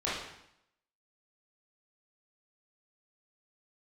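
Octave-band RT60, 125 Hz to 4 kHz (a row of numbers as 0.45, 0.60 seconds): 0.80, 0.80, 0.75, 0.80, 0.75, 0.70 seconds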